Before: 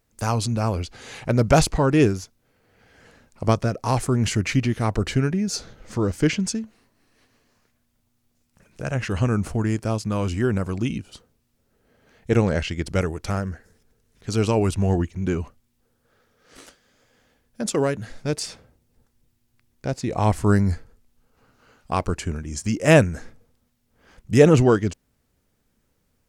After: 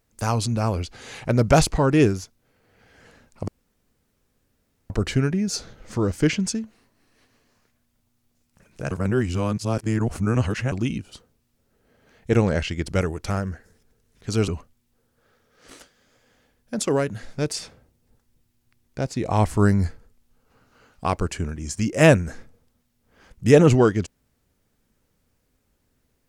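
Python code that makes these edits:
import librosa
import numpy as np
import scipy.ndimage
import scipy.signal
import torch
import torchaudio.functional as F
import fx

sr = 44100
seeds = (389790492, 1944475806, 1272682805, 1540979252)

y = fx.edit(x, sr, fx.room_tone_fill(start_s=3.48, length_s=1.42),
    fx.reverse_span(start_s=8.91, length_s=1.81),
    fx.cut(start_s=14.48, length_s=0.87), tone=tone)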